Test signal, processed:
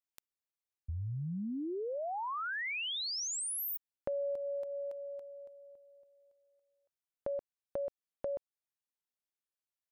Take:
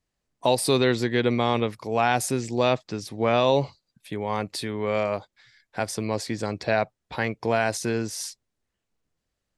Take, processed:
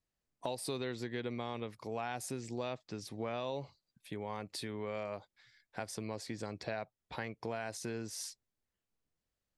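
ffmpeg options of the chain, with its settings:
ffmpeg -i in.wav -af "acompressor=threshold=-29dB:ratio=3,volume=-8.5dB" out.wav

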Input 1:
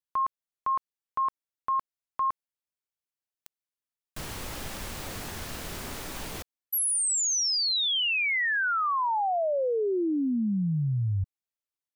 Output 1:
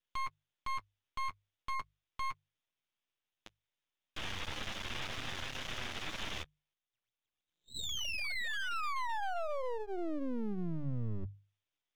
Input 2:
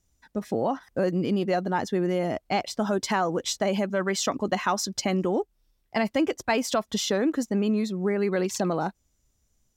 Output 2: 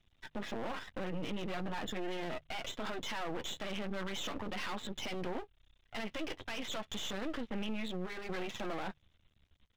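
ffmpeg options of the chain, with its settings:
ffmpeg -i in.wav -filter_complex "[0:a]flanger=delay=7.5:depth=3:regen=-21:speed=0.37:shape=sinusoidal,acompressor=threshold=-39dB:ratio=3:attack=26:release=21:knee=6:detection=peak,crystalizer=i=8.5:c=0,afftfilt=real='re*lt(hypot(re,im),0.631)':imag='im*lt(hypot(re,im),0.631)':win_size=1024:overlap=0.75,equalizer=frequency=74:width_type=o:width=1.4:gain=6,acrossover=split=130|2200[link_01][link_02][link_03];[link_02]acompressor=threshold=-28dB:ratio=10:attack=10:release=151:knee=2.83:detection=peak[link_04];[link_01][link_04][link_03]amix=inputs=3:normalize=0,aresample=8000,asoftclip=type=hard:threshold=-30dB,aresample=44100,alimiter=level_in=11dB:limit=-24dB:level=0:latency=1:release=43,volume=-11dB,bandreject=frequency=410:width=12,aeval=exprs='max(val(0),0)':channel_layout=same,bandreject=frequency=50:width_type=h:width=6,bandreject=frequency=100:width_type=h:width=6,bandreject=frequency=150:width_type=h:width=6,volume=6dB" out.wav

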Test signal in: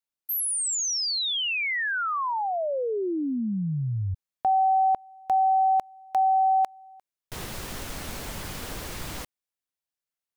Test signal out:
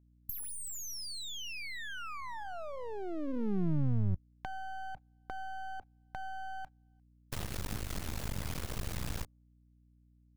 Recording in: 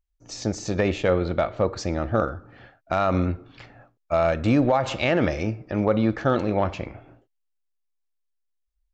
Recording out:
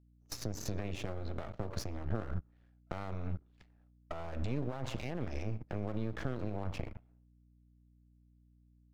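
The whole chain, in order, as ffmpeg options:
ffmpeg -i in.wav -filter_complex "[0:a]bandreject=frequency=286.4:width_type=h:width=4,bandreject=frequency=572.8:width_type=h:width=4,bandreject=frequency=859.2:width_type=h:width=4,bandreject=frequency=1145.6:width_type=h:width=4,agate=range=-31dB:threshold=-35dB:ratio=3:release=37:detection=rms,highpass=frequency=46:width=0.5412,highpass=frequency=46:width=1.3066,lowshelf=frequency=96:gain=11,acompressor=threshold=-27dB:ratio=6:attack=3:release=220:knee=1:detection=peak,alimiter=level_in=3.5dB:limit=-24dB:level=0:latency=1:release=184,volume=-3.5dB,acrossover=split=220[link_01][link_02];[link_02]acompressor=threshold=-43dB:ratio=6:attack=23:release=741:knee=2.83:detection=peak[link_03];[link_01][link_03]amix=inputs=2:normalize=0,aeval=exprs='max(val(0),0)':channel_layout=same,aeval=exprs='val(0)+0.000355*(sin(2*PI*60*n/s)+sin(2*PI*2*60*n/s)/2+sin(2*PI*3*60*n/s)/3+sin(2*PI*4*60*n/s)/4+sin(2*PI*5*60*n/s)/5)':channel_layout=same,volume=5.5dB" out.wav

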